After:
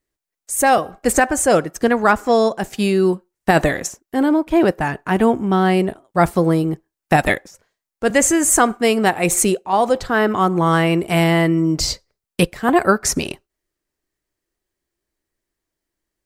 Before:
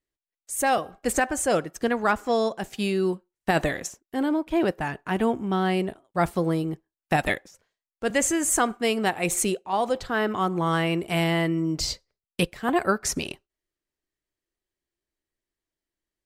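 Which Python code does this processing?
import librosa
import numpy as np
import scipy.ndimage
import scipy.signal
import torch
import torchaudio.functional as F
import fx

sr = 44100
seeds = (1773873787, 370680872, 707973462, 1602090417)

y = fx.peak_eq(x, sr, hz=3200.0, db=-4.0, octaves=0.95)
y = y * librosa.db_to_amplitude(8.5)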